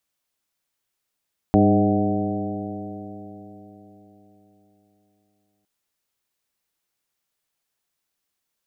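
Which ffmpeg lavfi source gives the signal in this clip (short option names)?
-f lavfi -i "aevalsrc='0.1*pow(10,-3*t/4.14)*sin(2*PI*99.95*t)+0.158*pow(10,-3*t/4.14)*sin(2*PI*200.83*t)+0.15*pow(10,-3*t/4.14)*sin(2*PI*303.55*t)+0.0794*pow(10,-3*t/4.14)*sin(2*PI*408.98*t)+0.0473*pow(10,-3*t/4.14)*sin(2*PI*517.98*t)+0.0794*pow(10,-3*t/4.14)*sin(2*PI*631.33*t)+0.0841*pow(10,-3*t/4.14)*sin(2*PI*749.78*t)':d=4.11:s=44100"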